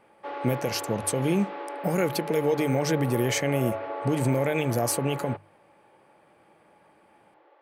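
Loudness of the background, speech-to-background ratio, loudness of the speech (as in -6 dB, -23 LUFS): -35.0 LUFS, 8.0 dB, -27.0 LUFS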